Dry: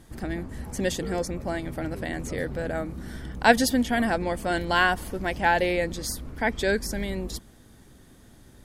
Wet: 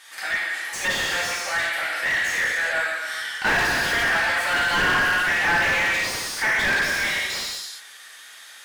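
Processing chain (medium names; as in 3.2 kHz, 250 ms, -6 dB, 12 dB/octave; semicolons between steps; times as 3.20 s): Chebyshev high-pass 1.9 kHz, order 2; gated-style reverb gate 450 ms falling, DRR -6 dB; overdrive pedal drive 25 dB, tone 4 kHz, clips at -6.5 dBFS; slew-rate limiter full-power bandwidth 300 Hz; trim -3.5 dB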